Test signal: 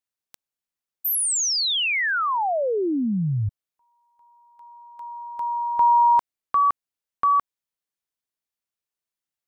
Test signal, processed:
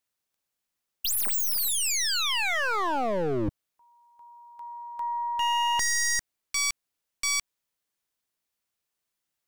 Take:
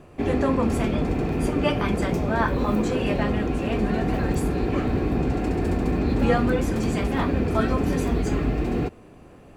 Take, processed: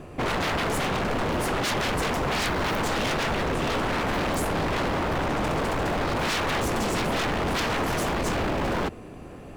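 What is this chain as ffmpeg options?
ffmpeg -i in.wav -af "aeval=exprs='0.422*(cos(1*acos(clip(val(0)/0.422,-1,1)))-cos(1*PI/2))+0.00266*(cos(2*acos(clip(val(0)/0.422,-1,1)))-cos(2*PI/2))+0.00944*(cos(5*acos(clip(val(0)/0.422,-1,1)))-cos(5*PI/2))+0.0237*(cos(6*acos(clip(val(0)/0.422,-1,1)))-cos(6*PI/2))':channel_layout=same,aeval=exprs='0.0501*(abs(mod(val(0)/0.0501+3,4)-2)-1)':channel_layout=same,volume=5dB" out.wav

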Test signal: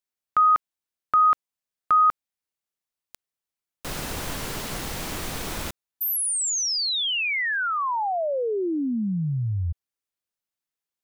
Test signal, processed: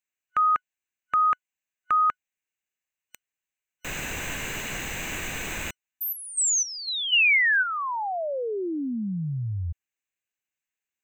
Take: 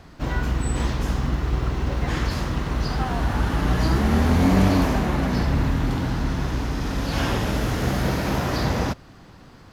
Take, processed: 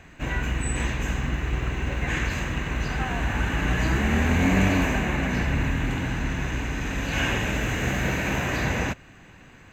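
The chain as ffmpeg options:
ffmpeg -i in.wav -af "superequalizer=11b=2.51:12b=3.16:14b=0.447:15b=2:16b=0.316,volume=-3.5dB" out.wav

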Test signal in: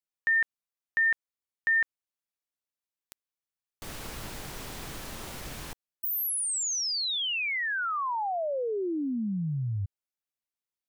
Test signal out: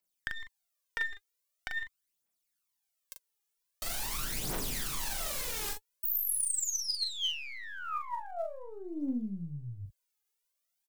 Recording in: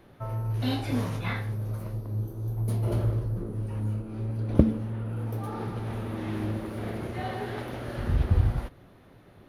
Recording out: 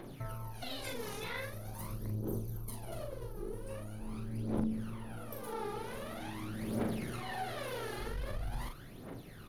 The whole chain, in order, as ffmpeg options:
ffmpeg -i in.wav -filter_complex "[0:a]equalizer=frequency=73:width_type=o:width=0.98:gain=-13.5,aeval=exprs='(tanh(7.94*val(0)+0.65)-tanh(0.65))/7.94':channel_layout=same,acompressor=threshold=-46dB:ratio=12:attack=9:release=33:knee=1:detection=peak,aphaser=in_gain=1:out_gain=1:delay=2.5:decay=0.73:speed=0.44:type=triangular,highshelf=frequency=4100:gain=8.5,asplit=2[link_01][link_02];[link_02]adelay=41,volume=-5dB[link_03];[link_01][link_03]amix=inputs=2:normalize=0,volume=2.5dB" out.wav

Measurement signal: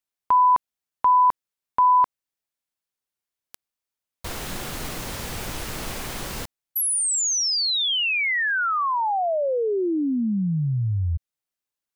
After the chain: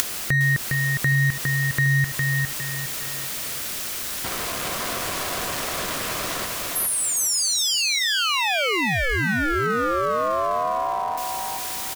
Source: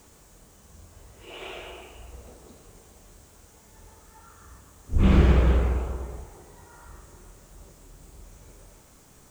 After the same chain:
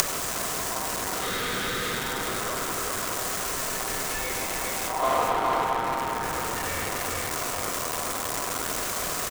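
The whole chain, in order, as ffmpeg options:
ffmpeg -i in.wav -filter_complex "[0:a]aeval=exprs='val(0)+0.5*0.0531*sgn(val(0))':channel_layout=same,highpass=120,asplit=2[link_01][link_02];[link_02]acompressor=threshold=-35dB:ratio=6:release=225:detection=peak,volume=2dB[link_03];[link_01][link_03]amix=inputs=2:normalize=0,aeval=exprs='val(0)*sin(2*PI*860*n/s)':channel_layout=same,aecho=1:1:408|816|1224|1632:0.668|0.227|0.0773|0.0263,acompressor=mode=upward:threshold=-28dB:ratio=2.5:attack=46:release=52:knee=2.83:detection=peak,volume=-2.5dB" out.wav

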